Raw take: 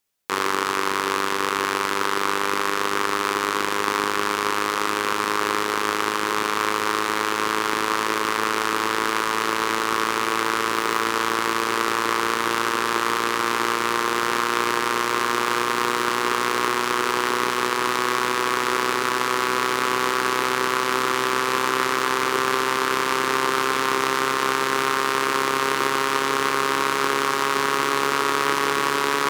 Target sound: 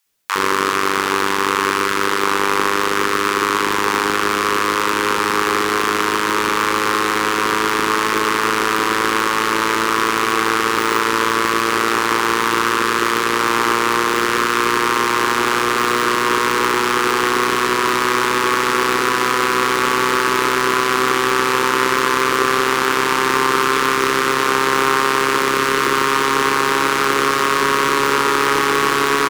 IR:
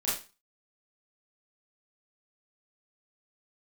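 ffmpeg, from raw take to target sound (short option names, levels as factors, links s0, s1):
-filter_complex "[0:a]acontrast=74,acrossover=split=740[s0][s1];[s0]adelay=60[s2];[s2][s1]amix=inputs=2:normalize=0,volume=1.12"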